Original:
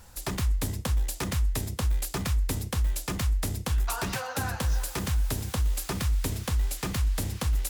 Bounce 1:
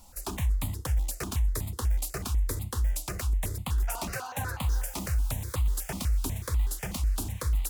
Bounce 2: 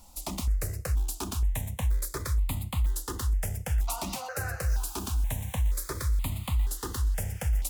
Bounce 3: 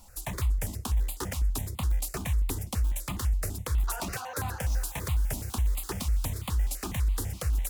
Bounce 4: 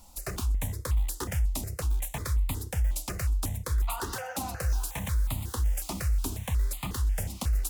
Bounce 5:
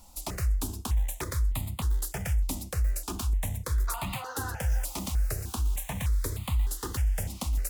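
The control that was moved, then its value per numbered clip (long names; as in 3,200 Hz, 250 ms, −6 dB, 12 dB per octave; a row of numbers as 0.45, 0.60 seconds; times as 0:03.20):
step-sequenced phaser, speed: 8.1, 2.1, 12, 5.5, 3.3 Hertz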